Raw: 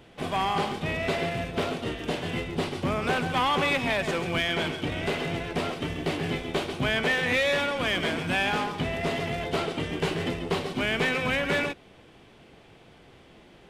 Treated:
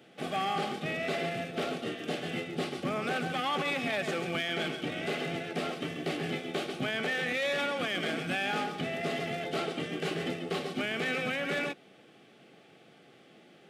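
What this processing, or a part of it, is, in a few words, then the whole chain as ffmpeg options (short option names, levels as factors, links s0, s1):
PA system with an anti-feedback notch: -af "highpass=f=150:w=0.5412,highpass=f=150:w=1.3066,asuperstop=centerf=970:order=12:qfactor=5.3,alimiter=limit=0.112:level=0:latency=1:release=16,volume=0.668"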